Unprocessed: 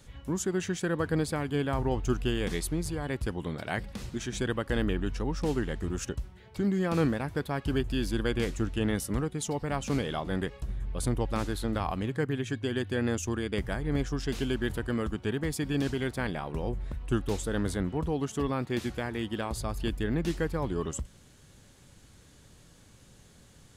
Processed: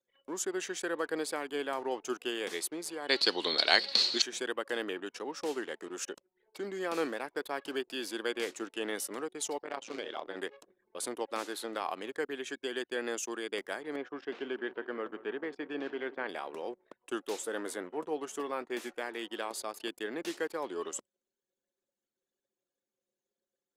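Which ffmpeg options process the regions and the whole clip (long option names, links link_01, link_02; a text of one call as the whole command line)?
ffmpeg -i in.wav -filter_complex "[0:a]asettb=1/sr,asplit=3[link_01][link_02][link_03];[link_01]atrim=end=3.094[link_04];[link_02]atrim=start=3.09:end=4.22,asetpts=PTS-STARTPTS,afade=type=in:duration=0.004:curve=qsin,afade=type=out:start_time=1.126:duration=0.004:curve=qsin,lowpass=frequency=4300:width_type=q:width=14,aemphasis=mode=production:type=50kf,acontrast=80[link_05];[link_03]atrim=start=4.216[link_06];[link_04][link_05]acrossfade=duration=0.004:curve1=hsin:curve2=qsin[link_07];[link_07][link_06]acrossfade=duration=0.004:curve1=qsin:curve2=hsin,asettb=1/sr,asplit=3[link_08][link_09][link_10];[link_08]atrim=end=9.634[link_11];[link_09]atrim=start=9.63:end=10.37,asetpts=PTS-STARTPTS,afade=type=in:duration=0.004:curve=qsin,afade=type=out:start_time=0.736:duration=0.004:curve=qsin,lowpass=5200,tremolo=f=110:d=0.824,volume=22.5dB,asoftclip=hard,volume=-22.5dB[link_12];[link_10]atrim=start=10.366[link_13];[link_11][link_12]acrossfade=duration=0.004:curve1=hsin:curve2=qsin[link_14];[link_14][link_13]acrossfade=duration=0.004:curve1=qsin:curve2=hsin,asettb=1/sr,asplit=3[link_15][link_16][link_17];[link_15]atrim=end=13.964[link_18];[link_16]atrim=start=13.96:end=16.29,asetpts=PTS-STARTPTS,afade=type=in:duration=0.004:curve=qsin,afade=type=out:start_time=2.326:duration=0.004:curve=qsin,lowpass=2100,aecho=1:1:171|342|513|684:0.158|0.0777|0.0381|0.0186,atrim=end_sample=102753[link_19];[link_17]atrim=start=16.286[link_20];[link_18][link_19]acrossfade=duration=0.004:curve1=hsin:curve2=qsin[link_21];[link_21][link_20]acrossfade=duration=0.004:curve1=qsin:curve2=hsin,asettb=1/sr,asplit=3[link_22][link_23][link_24];[link_22]atrim=end=17.394[link_25];[link_23]atrim=start=17.39:end=19.01,asetpts=PTS-STARTPTS,afade=type=in:duration=0.004:curve=qsin,afade=type=out:start_time=1.616:duration=0.004:curve=qsin,equalizer=frequency=4100:width_type=o:width=0.96:gain=-6,asplit=2[link_26][link_27];[link_27]adelay=13,volume=-11.5dB[link_28];[link_26][link_28]amix=inputs=2:normalize=0,atrim=end_sample=71442[link_29];[link_24]atrim=start=19.006[link_30];[link_25][link_29]acrossfade=duration=0.004:curve1=hsin:curve2=qsin[link_31];[link_31][link_30]acrossfade=duration=0.004:curve1=qsin:curve2=hsin,highpass=frequency=350:width=0.5412,highpass=frequency=350:width=1.3066,equalizer=frequency=610:width=0.38:gain=-2.5,anlmdn=0.00251" out.wav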